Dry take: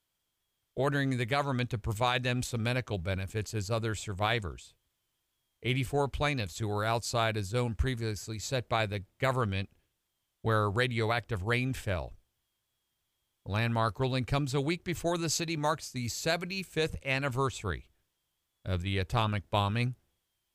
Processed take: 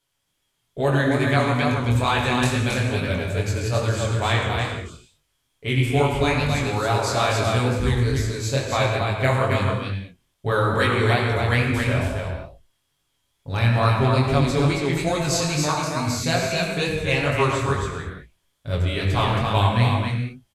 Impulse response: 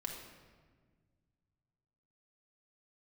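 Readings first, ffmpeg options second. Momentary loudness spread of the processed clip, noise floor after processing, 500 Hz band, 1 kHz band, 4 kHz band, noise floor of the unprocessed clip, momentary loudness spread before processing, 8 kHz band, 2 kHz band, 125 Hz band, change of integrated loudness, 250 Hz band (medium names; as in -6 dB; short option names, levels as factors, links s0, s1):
8 LU, -73 dBFS, +10.0 dB, +10.0 dB, +9.0 dB, -82 dBFS, 7 LU, +8.5 dB, +10.0 dB, +11.5 dB, +10.0 dB, +10.5 dB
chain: -filter_complex "[0:a]aecho=1:1:271:0.631[s0];[1:a]atrim=start_sample=2205,afade=t=out:st=0.17:d=0.01,atrim=end_sample=7938,asetrate=24696,aresample=44100[s1];[s0][s1]afir=irnorm=-1:irlink=0,flanger=delay=19.5:depth=5.7:speed=2.3,volume=2.66"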